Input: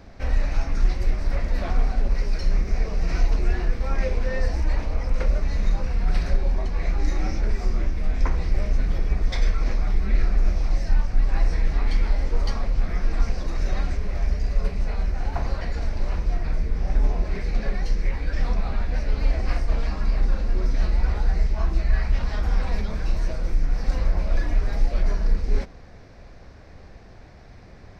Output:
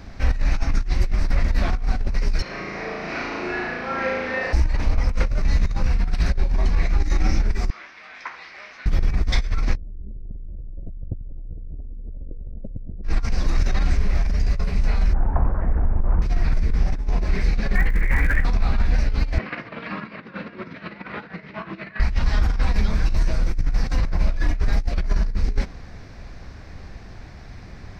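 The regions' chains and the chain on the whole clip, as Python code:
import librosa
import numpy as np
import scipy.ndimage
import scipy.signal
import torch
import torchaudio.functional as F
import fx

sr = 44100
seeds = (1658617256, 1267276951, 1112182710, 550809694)

y = fx.chain(x, sr, fx.bandpass_edges(low_hz=350.0, high_hz=2900.0),
    fx.room_flutter(wall_m=6.2, rt60_s=1.2), at=(2.42, 4.53))
y = fx.chain(y, sr, fx.highpass(hz=1200.0, slope=12),
    fx.air_absorb(metres=210.0), at=(7.7, 8.86))
y = fx.chain(y, sr, fx.steep_lowpass(hz=580.0, slope=48),
    fx.env_flatten(amount_pct=100), at=(9.76, 13.04))
y = fx.chain(y, sr, fx.lowpass(hz=1300.0, slope=24),
    fx.doppler_dist(depth_ms=0.74), at=(15.13, 16.22))
y = fx.ladder_lowpass(y, sr, hz=2200.0, resonance_pct=60, at=(17.74, 18.44), fade=0.02)
y = fx.dmg_crackle(y, sr, seeds[0], per_s=150.0, level_db=-46.0, at=(17.74, 18.44), fade=0.02)
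y = fx.env_flatten(y, sr, amount_pct=50, at=(17.74, 18.44), fade=0.02)
y = fx.chain(y, sr, fx.over_compress(threshold_db=-23.0, ratio=-1.0),
    fx.cabinet(low_hz=180.0, low_slope=24, high_hz=3100.0, hz=(250.0, 370.0, 780.0), db=(-6, -4, -9)), at=(19.38, 22.0))
y = fx.peak_eq(y, sr, hz=530.0, db=-6.5, octaves=1.2)
y = fx.over_compress(y, sr, threshold_db=-21.0, ratio=-0.5)
y = y * librosa.db_to_amplitude(3.0)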